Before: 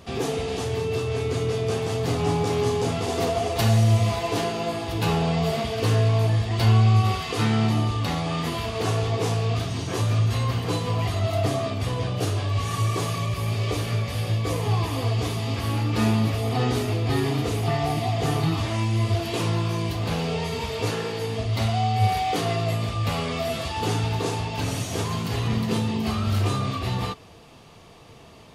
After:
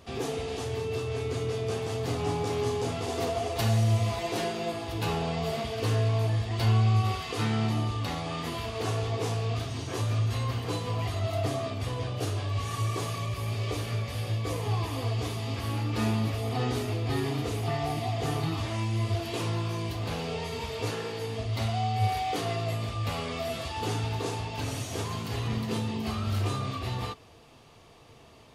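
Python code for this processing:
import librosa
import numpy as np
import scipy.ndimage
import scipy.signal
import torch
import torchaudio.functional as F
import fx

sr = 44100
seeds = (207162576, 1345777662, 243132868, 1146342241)

y = fx.comb(x, sr, ms=5.5, depth=0.62, at=(4.18, 4.72))
y = fx.peak_eq(y, sr, hz=180.0, db=-9.5, octaves=0.21)
y = y * 10.0 ** (-5.5 / 20.0)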